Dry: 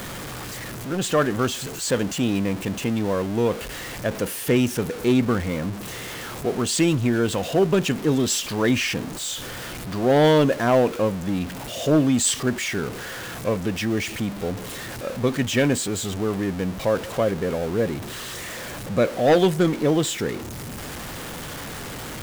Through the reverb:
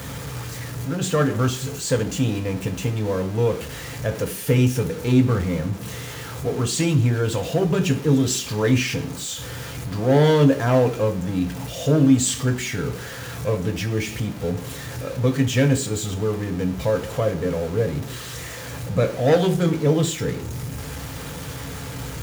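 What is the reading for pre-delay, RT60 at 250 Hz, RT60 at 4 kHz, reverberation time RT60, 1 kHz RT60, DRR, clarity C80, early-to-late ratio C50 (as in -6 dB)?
3 ms, 0.55 s, 0.65 s, 0.55 s, 0.55 s, 4.0 dB, 17.0 dB, 13.5 dB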